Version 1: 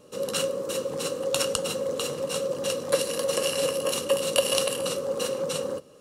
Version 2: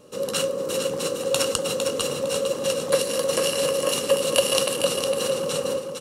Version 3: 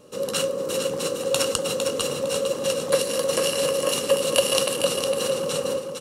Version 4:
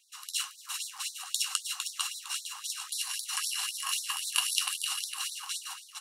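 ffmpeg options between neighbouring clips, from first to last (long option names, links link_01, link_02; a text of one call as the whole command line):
ffmpeg -i in.wav -af "aecho=1:1:456|912|1368|1824:0.501|0.15|0.0451|0.0135,volume=2.5dB" out.wav
ffmpeg -i in.wav -af anull out.wav
ffmpeg -i in.wav -af "flanger=delay=7.8:depth=2.7:regen=-59:speed=1.6:shape=sinusoidal,afftfilt=real='re*gte(b*sr/1024,720*pow(3600/720,0.5+0.5*sin(2*PI*3.8*pts/sr)))':imag='im*gte(b*sr/1024,720*pow(3600/720,0.5+0.5*sin(2*PI*3.8*pts/sr)))':win_size=1024:overlap=0.75" out.wav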